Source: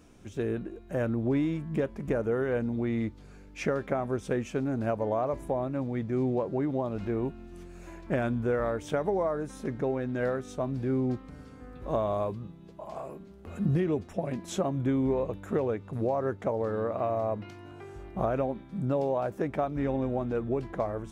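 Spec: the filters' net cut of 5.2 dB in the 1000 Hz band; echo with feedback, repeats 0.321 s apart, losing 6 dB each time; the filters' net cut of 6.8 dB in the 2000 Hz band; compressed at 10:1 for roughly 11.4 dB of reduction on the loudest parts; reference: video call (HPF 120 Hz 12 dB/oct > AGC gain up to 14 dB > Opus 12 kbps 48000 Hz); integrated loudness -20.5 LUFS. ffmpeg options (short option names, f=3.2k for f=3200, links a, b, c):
-af "equalizer=f=1k:t=o:g=-6.5,equalizer=f=2k:t=o:g=-6.5,acompressor=threshold=-35dB:ratio=10,highpass=120,aecho=1:1:321|642|963|1284|1605|1926:0.501|0.251|0.125|0.0626|0.0313|0.0157,dynaudnorm=m=14dB,volume=10.5dB" -ar 48000 -c:a libopus -b:a 12k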